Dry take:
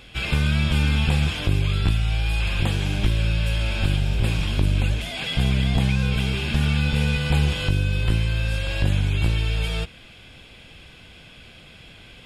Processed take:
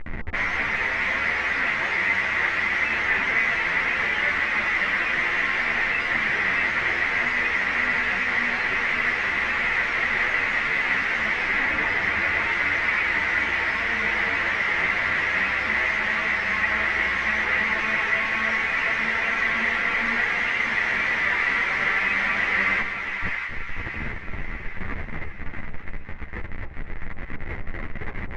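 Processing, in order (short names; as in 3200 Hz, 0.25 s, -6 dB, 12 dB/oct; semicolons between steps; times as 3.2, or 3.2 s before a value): spectral whitening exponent 0.1; in parallel at +1 dB: compressor, threshold -33 dBFS, peak gain reduction 17.5 dB; on the sum: Schmitt trigger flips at -30 dBFS; wide varispeed 0.432×; synth low-pass 2000 Hz, resonance Q 7.8; de-hum 66.51 Hz, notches 20; on a send: split-band echo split 830 Hz, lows 0.267 s, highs 0.652 s, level -6.5 dB; on the sum: ensemble effect; gain -7 dB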